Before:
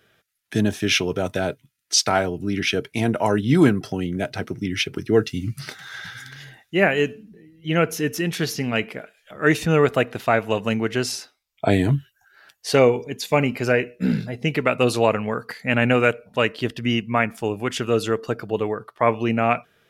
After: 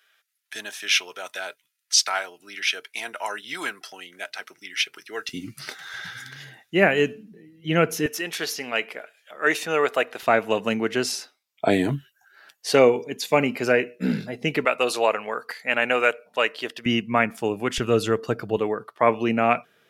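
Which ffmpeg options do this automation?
-af "asetnsamples=n=441:p=0,asendcmd='5.29 highpass f 300;5.94 highpass f 140;8.06 highpass f 520;10.23 highpass f 210;14.65 highpass f 520;16.86 highpass f 150;17.78 highpass f 48;18.57 highpass f 170',highpass=1.2k"

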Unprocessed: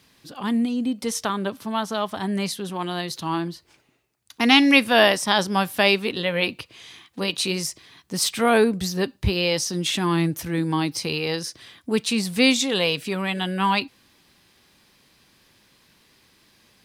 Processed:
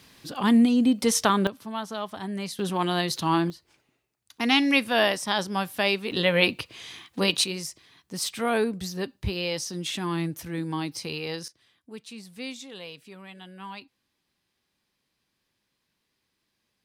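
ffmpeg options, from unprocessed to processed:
-af "asetnsamples=n=441:p=0,asendcmd='1.47 volume volume -7dB;2.59 volume volume 2.5dB;3.5 volume volume -6dB;6.12 volume volume 2dB;7.44 volume volume -7dB;11.48 volume volume -19dB',volume=4dB"

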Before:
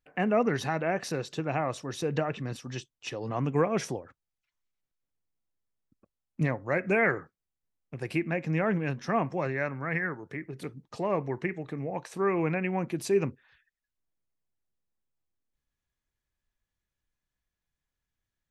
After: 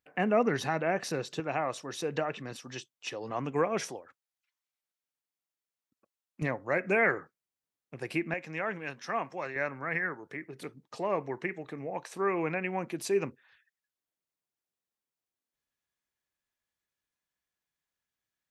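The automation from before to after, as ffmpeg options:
-af "asetnsamples=n=441:p=0,asendcmd='1.4 highpass f 390;3.9 highpass f 820;6.42 highpass f 280;8.34 highpass f 1000;9.56 highpass f 380',highpass=f=160:p=1"

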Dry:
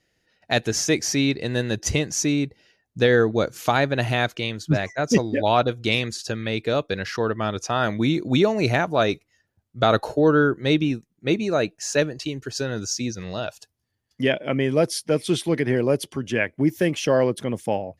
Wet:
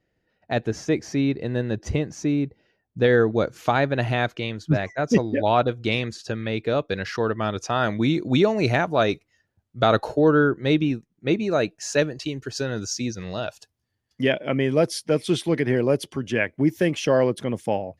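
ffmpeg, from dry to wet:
-af "asetnsamples=n=441:p=0,asendcmd='3.04 lowpass f 2500;6.91 lowpass f 5600;10.24 lowpass f 3200;11.51 lowpass f 6700',lowpass=f=1k:p=1"

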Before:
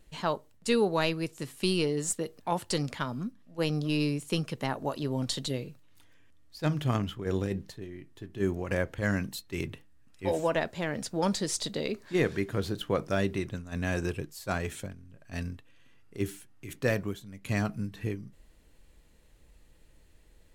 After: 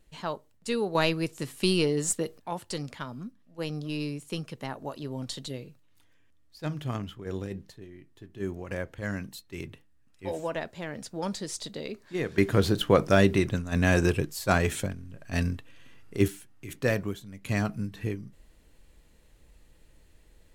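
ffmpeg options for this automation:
-af "asetnsamples=n=441:p=0,asendcmd='0.95 volume volume 3dB;2.38 volume volume -4.5dB;12.38 volume volume 8dB;16.28 volume volume 1.5dB',volume=-3.5dB"

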